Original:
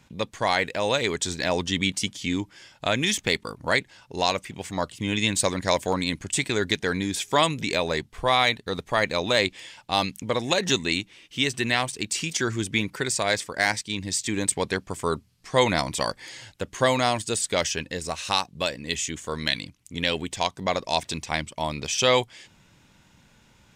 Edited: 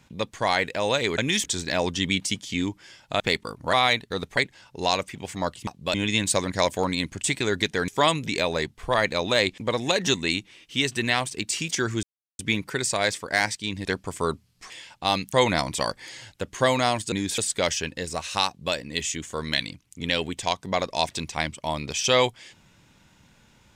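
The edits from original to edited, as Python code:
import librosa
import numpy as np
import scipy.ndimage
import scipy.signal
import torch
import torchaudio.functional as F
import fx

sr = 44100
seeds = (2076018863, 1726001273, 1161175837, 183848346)

y = fx.edit(x, sr, fx.move(start_s=2.92, length_s=0.28, to_s=1.18),
    fx.move(start_s=6.97, length_s=0.26, to_s=17.32),
    fx.move(start_s=8.29, length_s=0.64, to_s=3.73),
    fx.move(start_s=9.57, length_s=0.63, to_s=15.53),
    fx.insert_silence(at_s=12.65, length_s=0.36),
    fx.cut(start_s=14.11, length_s=0.57),
    fx.duplicate(start_s=18.41, length_s=0.27, to_s=5.03), tone=tone)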